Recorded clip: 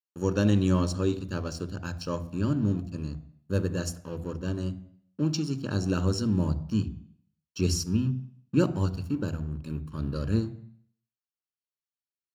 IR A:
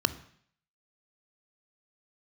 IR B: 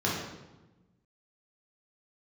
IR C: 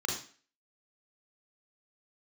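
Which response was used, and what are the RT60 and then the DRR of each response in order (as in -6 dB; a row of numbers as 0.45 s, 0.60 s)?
A; 0.60 s, 1.1 s, 0.40 s; 13.5 dB, -5.5 dB, -1.5 dB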